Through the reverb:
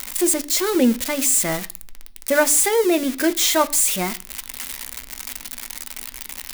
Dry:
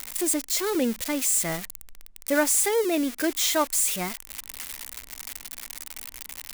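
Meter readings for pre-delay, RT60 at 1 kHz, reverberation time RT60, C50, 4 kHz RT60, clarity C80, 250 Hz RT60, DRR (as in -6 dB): 3 ms, 0.45 s, 0.45 s, 21.0 dB, 0.50 s, 24.5 dB, 0.50 s, 10.0 dB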